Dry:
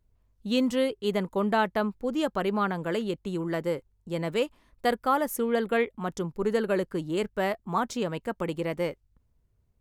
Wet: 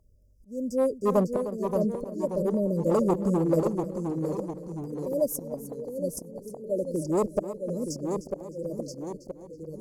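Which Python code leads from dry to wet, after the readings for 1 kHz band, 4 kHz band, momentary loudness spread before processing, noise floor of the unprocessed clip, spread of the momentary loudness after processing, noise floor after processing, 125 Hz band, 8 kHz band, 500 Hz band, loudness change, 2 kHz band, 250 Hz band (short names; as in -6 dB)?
-6.5 dB, under -10 dB, 7 LU, -70 dBFS, 14 LU, -53 dBFS, +3.5 dB, +3.0 dB, +1.0 dB, 0.0 dB, under -20 dB, +1.0 dB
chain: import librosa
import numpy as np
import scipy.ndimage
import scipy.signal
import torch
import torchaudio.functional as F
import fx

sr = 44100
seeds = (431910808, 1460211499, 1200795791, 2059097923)

p1 = fx.brickwall_bandstop(x, sr, low_hz=620.0, high_hz=4700.0)
p2 = fx.auto_swell(p1, sr, attack_ms=792.0)
p3 = fx.clip_asym(p2, sr, top_db=-28.0, bottom_db=-24.0)
p4 = fx.band_shelf(p3, sr, hz=840.0, db=10.5, octaves=1.2)
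p5 = p4 + fx.echo_feedback(p4, sr, ms=306, feedback_pct=29, wet_db=-14.0, dry=0)
p6 = fx.echo_pitch(p5, sr, ms=508, semitones=-1, count=3, db_per_echo=-6.0)
y = p6 * 10.0 ** (6.0 / 20.0)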